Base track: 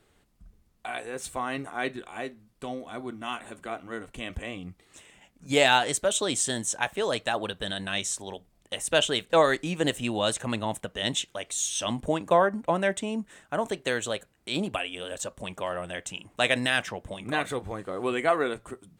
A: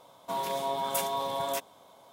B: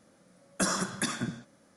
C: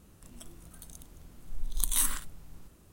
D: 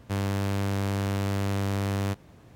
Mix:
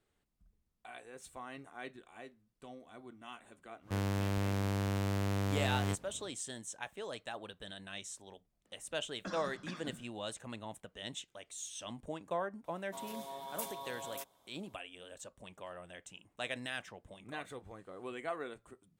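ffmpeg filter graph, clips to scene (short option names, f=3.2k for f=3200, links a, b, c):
-filter_complex "[0:a]volume=-15.5dB[a];[2:a]lowpass=f=4.8k:w=0.5412,lowpass=f=4.8k:w=1.3066[b];[1:a]highshelf=f=6.5k:g=7.5[c];[4:a]atrim=end=2.55,asetpts=PTS-STARTPTS,volume=-6dB,afade=t=in:d=0.1,afade=t=out:st=2.45:d=0.1,adelay=168021S[d];[b]atrim=end=1.76,asetpts=PTS-STARTPTS,volume=-14dB,afade=t=in:d=0.004:c=hsin,afade=t=out:st=1.756:d=0.004:c=hsin,adelay=8650[e];[c]atrim=end=2.12,asetpts=PTS-STARTPTS,volume=-14.5dB,afade=t=in:d=0.004:c=hsin,afade=t=out:st=2.116:d=0.004:c=hsin,adelay=12640[f];[a][d][e][f]amix=inputs=4:normalize=0"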